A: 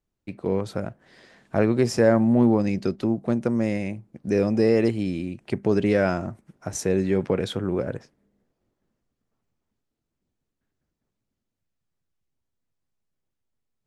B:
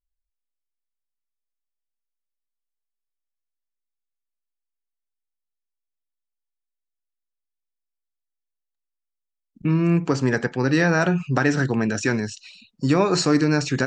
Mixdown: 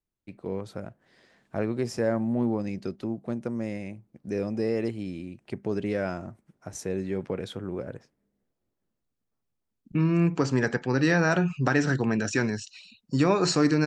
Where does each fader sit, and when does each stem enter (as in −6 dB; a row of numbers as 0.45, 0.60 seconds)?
−8.0, −3.5 decibels; 0.00, 0.30 seconds